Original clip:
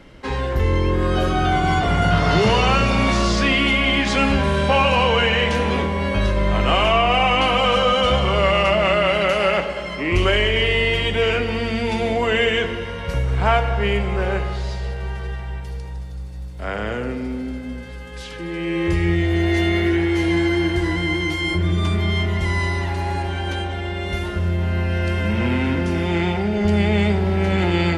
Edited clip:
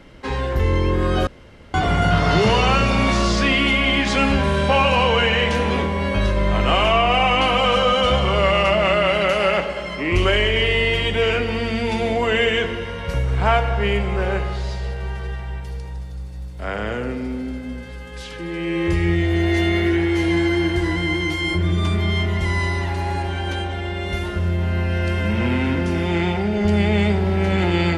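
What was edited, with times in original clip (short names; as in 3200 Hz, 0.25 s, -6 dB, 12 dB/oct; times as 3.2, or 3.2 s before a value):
1.27–1.74 room tone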